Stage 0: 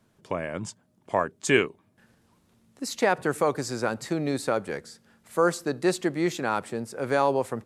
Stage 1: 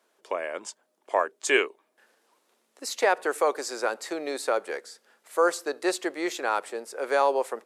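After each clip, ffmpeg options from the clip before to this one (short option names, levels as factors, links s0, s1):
-af "highpass=f=390:w=0.5412,highpass=f=390:w=1.3066,volume=1.12"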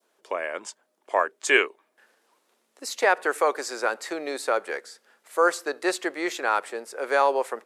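-af "adynamicequalizer=threshold=0.0158:dfrequency=1700:dqfactor=0.88:tfrequency=1700:tqfactor=0.88:attack=5:release=100:ratio=0.375:range=2.5:mode=boostabove:tftype=bell"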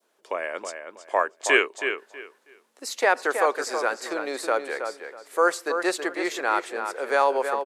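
-filter_complex "[0:a]asplit=2[s0][s1];[s1]adelay=322,lowpass=f=3700:p=1,volume=0.447,asplit=2[s2][s3];[s3]adelay=322,lowpass=f=3700:p=1,volume=0.23,asplit=2[s4][s5];[s5]adelay=322,lowpass=f=3700:p=1,volume=0.23[s6];[s0][s2][s4][s6]amix=inputs=4:normalize=0"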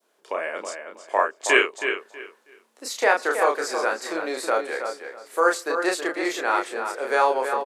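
-filter_complex "[0:a]asplit=2[s0][s1];[s1]adelay=31,volume=0.668[s2];[s0][s2]amix=inputs=2:normalize=0"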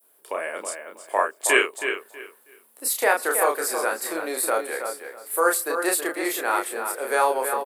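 -af "aexciter=amount=11.7:drive=4.7:freq=9000,volume=0.891"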